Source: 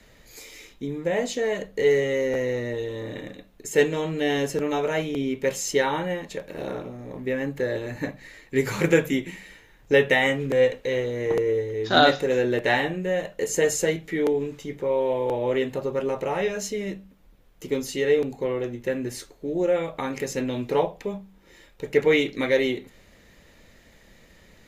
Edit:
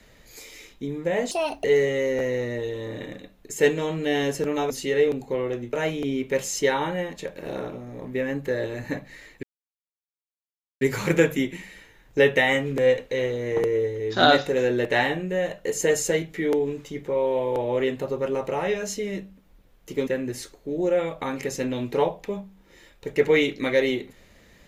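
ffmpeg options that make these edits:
ffmpeg -i in.wav -filter_complex "[0:a]asplit=7[link_01][link_02][link_03][link_04][link_05][link_06][link_07];[link_01]atrim=end=1.314[link_08];[link_02]atrim=start=1.31:end=1.79,asetpts=PTS-STARTPTS,asetrate=63945,aresample=44100[link_09];[link_03]atrim=start=1.786:end=4.852[link_10];[link_04]atrim=start=17.808:end=18.842[link_11];[link_05]atrim=start=4.848:end=8.55,asetpts=PTS-STARTPTS,afade=type=out:start_time=3.698:duration=0.004:curve=hsin,apad=pad_dur=1.38[link_12];[link_06]atrim=start=8.55:end=17.812,asetpts=PTS-STARTPTS,afade=type=in:duration=0.004:curve=hsin[link_13];[link_07]atrim=start=18.838[link_14];[link_08][link_09]acrossfade=duration=0.004:curve1=hsin:curve2=hsin[link_15];[link_15][link_10]acrossfade=duration=0.004:curve1=hsin:curve2=hsin[link_16];[link_16][link_11]acrossfade=duration=0.004:curve1=hsin:curve2=hsin[link_17];[link_12][link_13]concat=n=2:v=0:a=1[link_18];[link_17][link_18]acrossfade=duration=0.004:curve1=hsin:curve2=hsin[link_19];[link_19][link_14]acrossfade=duration=0.004:curve1=hsin:curve2=hsin" out.wav

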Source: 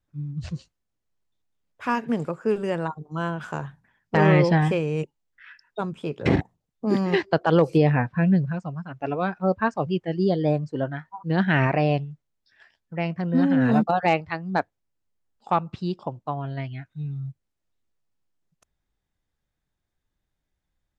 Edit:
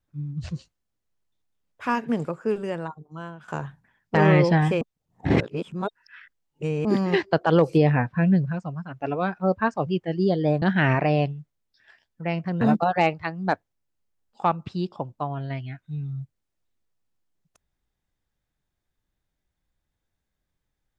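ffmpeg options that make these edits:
ffmpeg -i in.wav -filter_complex "[0:a]asplit=6[link_01][link_02][link_03][link_04][link_05][link_06];[link_01]atrim=end=3.48,asetpts=PTS-STARTPTS,afade=type=out:start_time=2.21:duration=1.27:silence=0.188365[link_07];[link_02]atrim=start=3.48:end=4.812,asetpts=PTS-STARTPTS,afade=type=in:duration=0.004:curve=hsin:silence=0.188365[link_08];[link_03]atrim=start=4.808:end=6.852,asetpts=PTS-STARTPTS,areverse[link_09];[link_04]atrim=start=6.848:end=10.622[link_10];[link_05]atrim=start=11.338:end=13.332[link_11];[link_06]atrim=start=13.678[link_12];[link_07][link_08]concat=n=2:v=0:a=1[link_13];[link_13][link_09]acrossfade=duration=0.004:curve1=hsin:curve2=hsin[link_14];[link_14][link_10]acrossfade=duration=0.004:curve1=hsin:curve2=hsin[link_15];[link_15][link_11]acrossfade=duration=0.004:curve1=hsin:curve2=hsin[link_16];[link_16][link_12]acrossfade=duration=0.004:curve1=hsin:curve2=hsin" out.wav

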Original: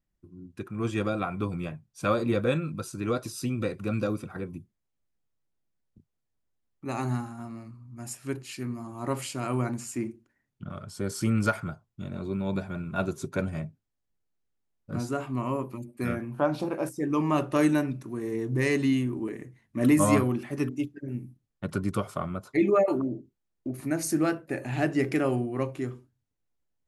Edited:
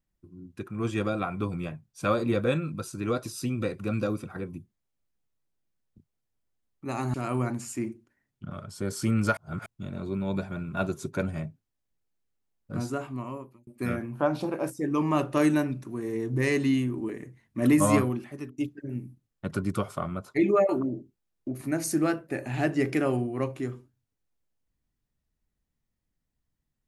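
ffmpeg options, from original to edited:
ffmpeg -i in.wav -filter_complex "[0:a]asplit=6[link_01][link_02][link_03][link_04][link_05][link_06];[link_01]atrim=end=7.142[link_07];[link_02]atrim=start=9.328:end=11.562[link_08];[link_03]atrim=start=11.558:end=11.852,asetpts=PTS-STARTPTS,areverse[link_09];[link_04]atrim=start=11.848:end=15.86,asetpts=PTS-STARTPTS,afade=type=out:start_time=3.182:duration=0.83[link_10];[link_05]atrim=start=15.86:end=20.77,asetpts=PTS-STARTPTS,afade=type=in:duration=0.004:curve=hsin,afade=type=out:start_time=4.29:duration=0.62:silence=0.11885[link_11];[link_06]atrim=start=20.77,asetpts=PTS-STARTPTS,afade=type=in:duration=0.004:curve=hsin:silence=0.11885[link_12];[link_07][link_08]acrossfade=duration=0.004:curve1=hsin:curve2=hsin[link_13];[link_13][link_09]acrossfade=duration=0.004:curve1=hsin:curve2=hsin[link_14];[link_10][link_11][link_12]concat=n=3:v=0:a=1[link_15];[link_14][link_15]acrossfade=duration=0.004:curve1=hsin:curve2=hsin" out.wav

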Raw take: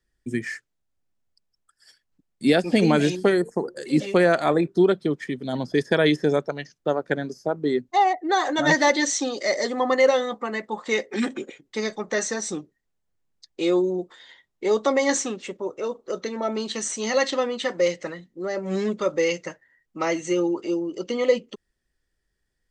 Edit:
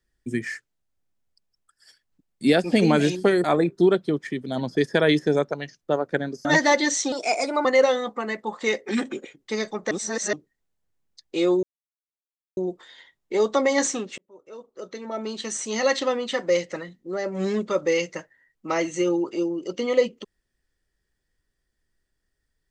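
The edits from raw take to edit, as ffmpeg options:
ffmpeg -i in.wav -filter_complex "[0:a]asplit=9[link_01][link_02][link_03][link_04][link_05][link_06][link_07][link_08][link_09];[link_01]atrim=end=3.442[link_10];[link_02]atrim=start=4.408:end=7.422[link_11];[link_03]atrim=start=8.608:end=9.284[link_12];[link_04]atrim=start=9.28:end=9.9,asetpts=PTS-STARTPTS,asetrate=51597,aresample=44100,atrim=end_sample=23369,asetpts=PTS-STARTPTS[link_13];[link_05]atrim=start=9.896:end=12.162[link_14];[link_06]atrim=start=12.158:end=12.582,asetpts=PTS-STARTPTS,areverse[link_15];[link_07]atrim=start=12.578:end=13.88,asetpts=PTS-STARTPTS,afade=type=out:start_time=1.298:duration=0.004:curve=hsin,apad=pad_dur=0.94[link_16];[link_08]atrim=start=13.88:end=15.49,asetpts=PTS-STARTPTS,afade=type=in:duration=0.004:curve=hsin,afade=type=out:start_time=1.606:duration=0.004:curve=hsin[link_17];[link_09]atrim=start=15.49,asetpts=PTS-STARTPTS,afade=type=in:duration=1.63[link_18];[link_10][link_11]acrossfade=duration=0.004:curve1=hsin:curve2=hsin[link_19];[link_19][link_12]acrossfade=duration=0.004:curve1=hsin:curve2=hsin[link_20];[link_20][link_13]acrossfade=duration=0.004:curve1=hsin:curve2=hsin[link_21];[link_21][link_14]acrossfade=duration=0.004:curve1=hsin:curve2=hsin[link_22];[link_22][link_15]acrossfade=duration=0.004:curve1=hsin:curve2=hsin[link_23];[link_16][link_17][link_18]concat=n=3:v=0:a=1[link_24];[link_23][link_24]acrossfade=duration=0.004:curve1=hsin:curve2=hsin" out.wav

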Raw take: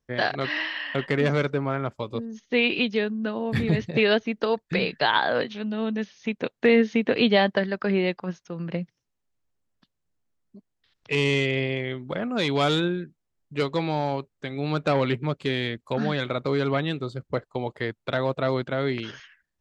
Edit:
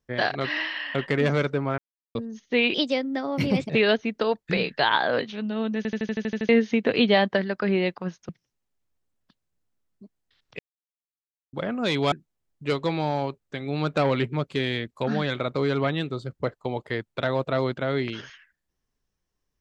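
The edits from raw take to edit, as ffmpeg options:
ffmpeg -i in.wav -filter_complex "[0:a]asplit=18[link_01][link_02][link_03][link_04][link_05][link_06][link_07][link_08][link_09][link_10][link_11][link_12][link_13][link_14][link_15][link_16][link_17][link_18];[link_01]atrim=end=1.78,asetpts=PTS-STARTPTS,afade=type=out:start_time=1.776:duration=0.004:curve=hsin[link_19];[link_02]atrim=start=1.78:end=2.15,asetpts=PTS-STARTPTS,volume=0[link_20];[link_03]atrim=start=2.15:end=2.744,asetpts=PTS-STARTPTS,afade=type=in:duration=0.004:curve=hsin[link_21];[link_04]atrim=start=2.74:end=3.92,asetpts=PTS-STARTPTS,asetrate=54243,aresample=44100,atrim=end_sample=42307,asetpts=PTS-STARTPTS[link_22];[link_05]atrim=start=3.916:end=6.072[link_23];[link_06]atrim=start=5.988:end=6.072[link_24];[link_07]atrim=start=5.988:end=6.072[link_25];[link_08]atrim=start=5.988:end=6.072[link_26];[link_09]atrim=start=5.988:end=6.072[link_27];[link_10]atrim=start=5.988:end=6.072[link_28];[link_11]atrim=start=5.988:end=6.072[link_29];[link_12]atrim=start=5.988:end=6.072[link_30];[link_13]atrim=start=5.988:end=6.072[link_31];[link_14]atrim=start=6.708:end=8.512[link_32];[link_15]atrim=start=8.818:end=11.12,asetpts=PTS-STARTPTS,afade=type=out:start_time=2.298:duration=0.004:curve=hsin[link_33];[link_16]atrim=start=11.12:end=12.06,asetpts=PTS-STARTPTS,volume=0[link_34];[link_17]atrim=start=12.06:end=12.652,asetpts=PTS-STARTPTS,afade=type=in:duration=0.004:curve=hsin[link_35];[link_18]atrim=start=13.018[link_36];[link_19][link_20][link_21]concat=n=3:v=0:a=1[link_37];[link_37][link_22]acrossfade=duration=0.004:curve1=hsin:curve2=hsin[link_38];[link_38][link_23]acrossfade=duration=0.004:curve1=hsin:curve2=hsin[link_39];[link_39][link_24]acrossfade=duration=0.004:curve1=hsin:curve2=hsin[link_40];[link_40][link_25]acrossfade=duration=0.004:curve1=hsin:curve2=hsin[link_41];[link_41][link_26]acrossfade=duration=0.004:curve1=hsin:curve2=hsin[link_42];[link_42][link_27]acrossfade=duration=0.004:curve1=hsin:curve2=hsin[link_43];[link_43][link_28]acrossfade=duration=0.004:curve1=hsin:curve2=hsin[link_44];[link_44][link_29]acrossfade=duration=0.004:curve1=hsin:curve2=hsin[link_45];[link_45][link_30]acrossfade=duration=0.004:curve1=hsin:curve2=hsin[link_46];[link_46][link_31]acrossfade=duration=0.004:curve1=hsin:curve2=hsin[link_47];[link_47][link_32]acrossfade=duration=0.004:curve1=hsin:curve2=hsin[link_48];[link_33][link_34][link_35]concat=n=3:v=0:a=1[link_49];[link_48][link_49]acrossfade=duration=0.004:curve1=hsin:curve2=hsin[link_50];[link_50][link_36]acrossfade=duration=0.004:curve1=hsin:curve2=hsin" out.wav

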